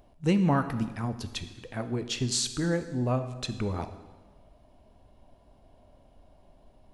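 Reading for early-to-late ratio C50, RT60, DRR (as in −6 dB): 11.0 dB, 1.3 s, 9.0 dB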